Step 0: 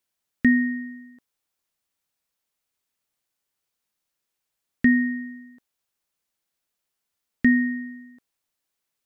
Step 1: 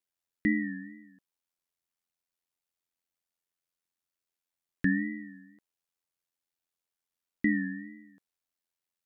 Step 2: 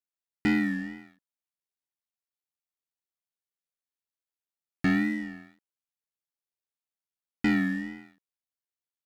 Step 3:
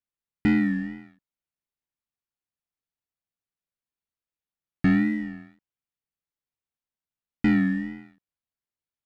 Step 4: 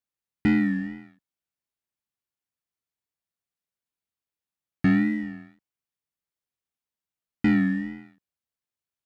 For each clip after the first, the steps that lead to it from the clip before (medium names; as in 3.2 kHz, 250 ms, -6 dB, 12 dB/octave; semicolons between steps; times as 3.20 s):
wow and flutter 91 cents; ring modulator 43 Hz; trim -6 dB
waveshaping leveller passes 3; trim -3.5 dB
tone controls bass +8 dB, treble -8 dB
high-pass 40 Hz